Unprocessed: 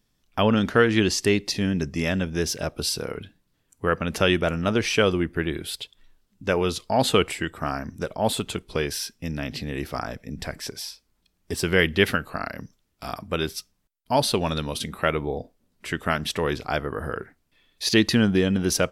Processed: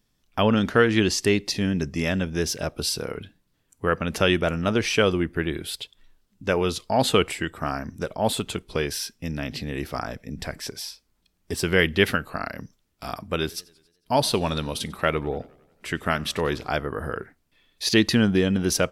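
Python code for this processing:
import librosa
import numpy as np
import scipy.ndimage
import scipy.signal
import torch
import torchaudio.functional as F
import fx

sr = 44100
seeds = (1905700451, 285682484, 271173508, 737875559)

y = fx.echo_warbled(x, sr, ms=91, feedback_pct=60, rate_hz=2.8, cents=149, wet_db=-24.0, at=(13.39, 16.7))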